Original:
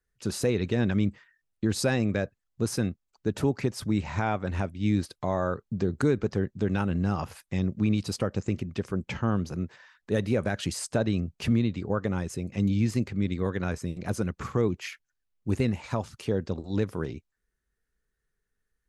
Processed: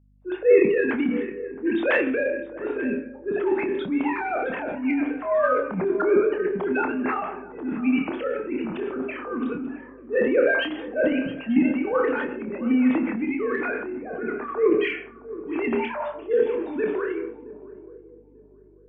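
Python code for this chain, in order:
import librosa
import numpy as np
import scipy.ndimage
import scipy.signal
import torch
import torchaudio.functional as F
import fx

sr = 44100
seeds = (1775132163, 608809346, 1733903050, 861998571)

y = fx.sine_speech(x, sr)
y = fx.rev_plate(y, sr, seeds[0], rt60_s=0.61, hf_ratio=0.95, predelay_ms=0, drr_db=4.5)
y = fx.transient(y, sr, attack_db=-8, sustain_db=8)
y = fx.peak_eq(y, sr, hz=240.0, db=-2.5, octaves=0.77)
y = fx.echo_swing(y, sr, ms=890, ratio=3, feedback_pct=32, wet_db=-16.0)
y = fx.env_lowpass(y, sr, base_hz=410.0, full_db=-23.0)
y = fx.doubler(y, sr, ms=27.0, db=-7)
y = fx.add_hum(y, sr, base_hz=50, snr_db=34)
y = y * 10.0 ** (3.0 / 20.0)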